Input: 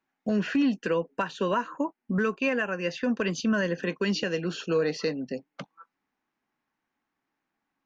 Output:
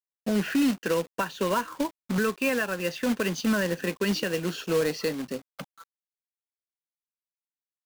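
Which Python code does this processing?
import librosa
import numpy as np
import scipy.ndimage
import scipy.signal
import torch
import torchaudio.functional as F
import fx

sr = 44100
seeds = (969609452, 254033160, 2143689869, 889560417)

y = fx.quant_companded(x, sr, bits=4)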